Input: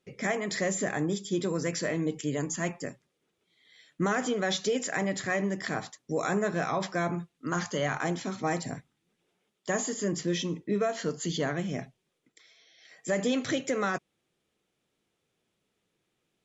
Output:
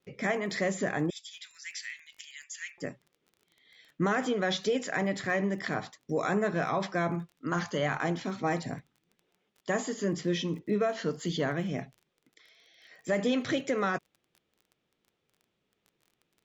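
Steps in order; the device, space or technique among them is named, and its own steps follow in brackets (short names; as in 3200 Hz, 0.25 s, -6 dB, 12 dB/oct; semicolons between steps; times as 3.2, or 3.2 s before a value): 1.1–2.78 steep high-pass 1900 Hz 36 dB/oct; lo-fi chain (LPF 4800 Hz 12 dB/oct; wow and flutter 28 cents; crackle 23/s -46 dBFS)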